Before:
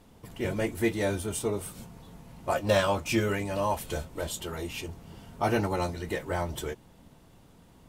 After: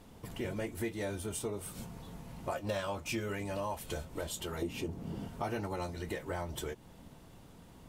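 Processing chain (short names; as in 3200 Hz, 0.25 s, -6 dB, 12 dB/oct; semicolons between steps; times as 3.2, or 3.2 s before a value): 4.62–5.28 bell 250 Hz +12.5 dB 2.8 oct; compressor 3:1, threshold -38 dBFS, peak gain reduction 14 dB; gain +1 dB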